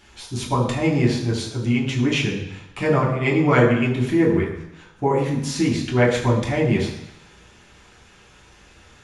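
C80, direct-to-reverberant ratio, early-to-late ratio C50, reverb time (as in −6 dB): 8.0 dB, −5.0 dB, 5.5 dB, 0.85 s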